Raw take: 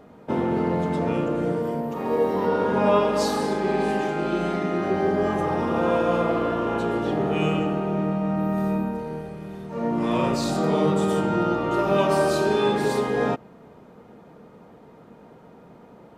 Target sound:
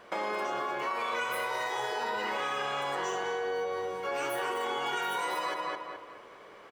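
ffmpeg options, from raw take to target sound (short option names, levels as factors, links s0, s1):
-filter_complex "[0:a]asplit=2[s0][s1];[s1]adelay=512,lowpass=f=1300:p=1,volume=0.501,asplit=2[s2][s3];[s3]adelay=512,lowpass=f=1300:p=1,volume=0.4,asplit=2[s4][s5];[s5]adelay=512,lowpass=f=1300:p=1,volume=0.4,asplit=2[s6][s7];[s7]adelay=512,lowpass=f=1300:p=1,volume=0.4,asplit=2[s8][s9];[s9]adelay=512,lowpass=f=1300:p=1,volume=0.4[s10];[s0][s2][s4][s6][s8][s10]amix=inputs=6:normalize=0,acompressor=threshold=0.0562:ratio=6,asetrate=106281,aresample=44100,volume=0.596"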